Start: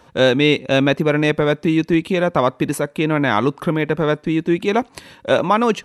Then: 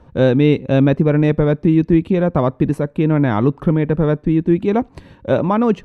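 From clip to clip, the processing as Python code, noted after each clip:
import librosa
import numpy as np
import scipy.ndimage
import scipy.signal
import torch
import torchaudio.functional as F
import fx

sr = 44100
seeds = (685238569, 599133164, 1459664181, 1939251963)

y = fx.tilt_eq(x, sr, slope=-4.0)
y = F.gain(torch.from_numpy(y), -4.0).numpy()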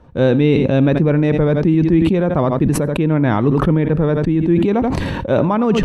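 y = x + 10.0 ** (-17.0 / 20.0) * np.pad(x, (int(83 * sr / 1000.0), 0))[:len(x)]
y = fx.sustainer(y, sr, db_per_s=22.0)
y = F.gain(torch.from_numpy(y), -1.0).numpy()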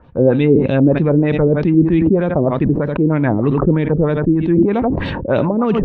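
y = fx.filter_lfo_lowpass(x, sr, shape='sine', hz=3.2, low_hz=360.0, high_hz=3900.0, q=2.0)
y = F.gain(torch.from_numpy(y), -1.0).numpy()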